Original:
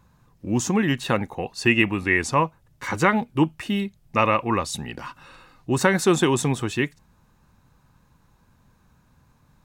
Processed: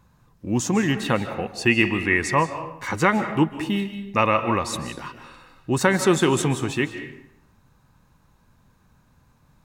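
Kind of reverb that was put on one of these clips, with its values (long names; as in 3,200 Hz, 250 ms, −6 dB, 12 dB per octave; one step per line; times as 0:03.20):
comb and all-pass reverb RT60 0.78 s, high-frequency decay 0.75×, pre-delay 115 ms, DRR 9.5 dB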